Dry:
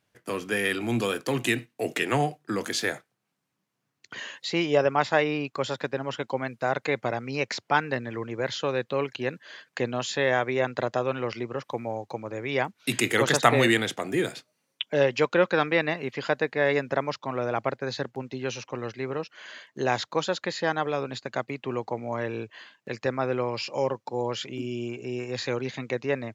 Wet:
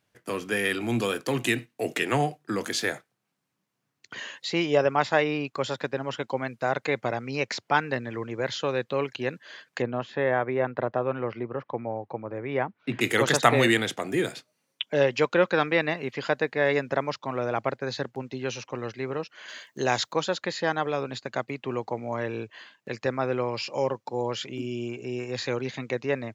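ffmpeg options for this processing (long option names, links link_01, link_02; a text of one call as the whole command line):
ffmpeg -i in.wav -filter_complex "[0:a]asettb=1/sr,asplit=3[link_01][link_02][link_03];[link_01]atrim=end=9.824[link_04];[link_02]atrim=start=9.82:end=13.01,asetpts=PTS-STARTPTS,afade=type=in:duration=0.004:curve=qsin,afade=type=out:start_time=3.186:duration=0.004:curve=qsin,lowpass=1700[link_05];[link_03]atrim=start=13.006[link_06];[link_04][link_05]acrossfade=duration=0.004:curve1=hsin:curve2=qsin[link_07];[link_07][link_06]acrossfade=duration=0.004:curve1=qsin:curve2=hsin,asettb=1/sr,asplit=3[link_08][link_09][link_10];[link_08]atrim=end=19.484[link_11];[link_09]atrim=start=19.48:end=20.13,asetpts=PTS-STARTPTS,afade=type=in:duration=0.004:curve=qsin,afade=type=out:start_time=0.646:duration=0.004:curve=qsin,aemphasis=mode=production:type=50kf[link_12];[link_10]atrim=start=20.126[link_13];[link_11][link_12]acrossfade=duration=0.004:curve1=hsin:curve2=qsin[link_14];[link_14][link_13]acrossfade=duration=0.004:curve1=qsin:curve2=hsin" out.wav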